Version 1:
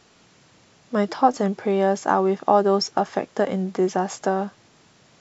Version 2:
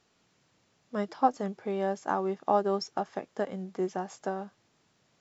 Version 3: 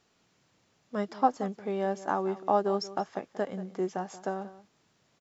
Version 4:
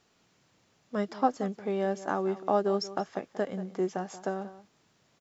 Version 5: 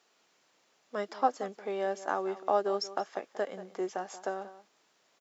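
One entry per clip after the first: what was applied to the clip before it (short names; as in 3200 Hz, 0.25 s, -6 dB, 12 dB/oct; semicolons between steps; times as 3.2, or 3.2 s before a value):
upward expander 1.5:1, over -27 dBFS; gain -6.5 dB
outdoor echo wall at 31 m, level -16 dB
dynamic EQ 920 Hz, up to -6 dB, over -41 dBFS, Q 2.3; gain +1.5 dB
HPF 420 Hz 12 dB/oct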